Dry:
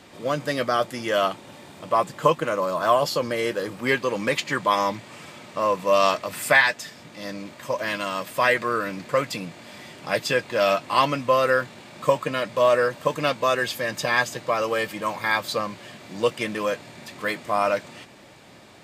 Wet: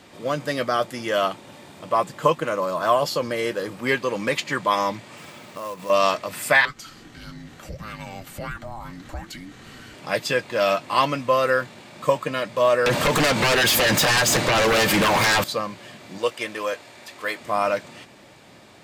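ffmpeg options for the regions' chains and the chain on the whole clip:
-filter_complex "[0:a]asettb=1/sr,asplit=3[a][b][c];[a]atrim=end=5.174[d];[b]atrim=start=5.17:end=5.9,asetpts=PTS-STARTPTS,afade=t=in:d=0.004:c=qsin,afade=t=out:st=0.726:d=0.004:c=qsin,acrusher=bits=3:mode=log:mix=0:aa=0.000001,acompressor=threshold=-33dB:ratio=2.5:attack=3.2:release=140:knee=1:detection=peak[e];[c]atrim=start=5.896[f];[d][e]acrossfade=d=0.004:c1=hsin:c2=qsin[g];[g][f]acrossfade=d=0.004:c1=qsin:c2=hsin,asettb=1/sr,asplit=3[h][i][j];[h]atrim=end=6.654[k];[i]atrim=start=6.65:end=9.94,asetpts=PTS-STARTPTS,afade=t=in:d=0.004:c=qsin,afade=t=out:st=3.286:d=0.004:c=qsin,acompressor=threshold=-38dB:ratio=2:attack=3.2:release=140:knee=1:detection=peak,afreqshift=-460[l];[j]atrim=start=9.936[m];[k][l]acrossfade=d=0.004:c1=hsin:c2=qsin[n];[n][m]acrossfade=d=0.004:c1=qsin:c2=hsin,asettb=1/sr,asplit=3[o][p][q];[o]atrim=end=12.864[r];[p]atrim=start=12.86:end=15.44,asetpts=PTS-STARTPTS,afade=t=in:d=0.004:c=qsin,afade=t=out:st=2.576:d=0.004:c=qsin,acompressor=threshold=-28dB:ratio=4:attack=3.2:release=140:knee=1:detection=peak,aeval=exprs='0.178*sin(PI/2*6.31*val(0)/0.178)':c=same[s];[q]atrim=start=15.436[t];[r][s]acrossfade=d=0.004:c1=hsin:c2=qsin[u];[u][t]acrossfade=d=0.004:c1=qsin:c2=hsin,asettb=1/sr,asplit=3[v][w][x];[v]atrim=end=16.184[y];[w]atrim=start=16.18:end=17.41,asetpts=PTS-STARTPTS,afade=t=in:d=0.004:c=qsin,afade=t=out:st=1.226:d=0.004:c=qsin,highpass=90,equalizer=f=170:w=1.2:g=-14[z];[x]atrim=start=17.406[aa];[y][z]acrossfade=d=0.004:c1=hsin:c2=qsin[ab];[ab][aa]acrossfade=d=0.004:c1=qsin:c2=hsin"

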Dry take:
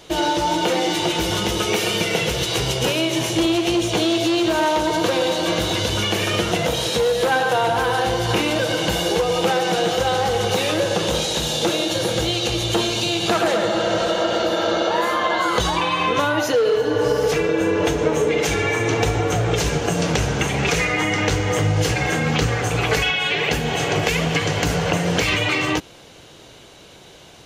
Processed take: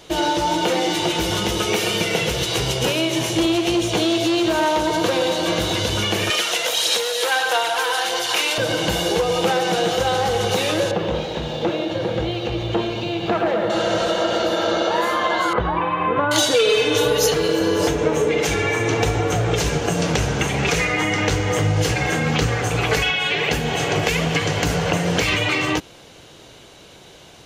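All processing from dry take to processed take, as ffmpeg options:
-filter_complex "[0:a]asettb=1/sr,asplit=3[a][b][c];[a]atrim=end=6.304[d];[b]atrim=start=6.3:end=8.58,asetpts=PTS-STARTPTS,afade=t=in:d=0.004:c=qsin,afade=t=out:st=2.276:d=0.004:c=qsin,highpass=440,tiltshelf=f=1.3k:g=-6,aphaser=in_gain=1:out_gain=1:delay=2.2:decay=0.3:speed=1.6:type=sinusoidal[e];[c]atrim=start=8.576[f];[d][e]acrossfade=d=0.004:c1=hsin:c2=qsin[g];[g][f]acrossfade=d=0.004:c1=qsin:c2=hsin,asettb=1/sr,asplit=3[h][i][j];[h]atrim=end=10.914[k];[i]atrim=start=10.91:end=13.7,asetpts=PTS-STARTPTS,afade=t=in:d=0.004:c=qsin,afade=t=out:st=2.786:d=0.004:c=qsin,lowpass=2.2k,equalizer=f=1.4k:w=1.7:g=-3,aeval=exprs='sgn(val(0))*max(abs(val(0))-0.00224,0)':c=same[l];[j]atrim=start=13.696[m];[k][l]acrossfade=d=0.004:c1=hsin:c2=qsin[n];[n][m]acrossfade=d=0.004:c1=qsin:c2=hsin,asettb=1/sr,asplit=3[o][p][q];[o]atrim=end=15.534[r];[p]atrim=start=15.53:end=17.88,asetpts=PTS-STARTPTS,afade=t=in:d=0.004:c=qsin,afade=t=out:st=2.346:d=0.004:c=qsin,highshelf=f=3.1k:g=11,acrossover=split=1900[s][t];[t]adelay=780[u];[s][u]amix=inputs=2:normalize=0,atrim=end_sample=103635[v];[q]atrim=start=17.876[w];[r][v]acrossfade=d=0.004:c1=hsin:c2=qsin[x];[x][w]acrossfade=d=0.004:c1=qsin:c2=hsin"

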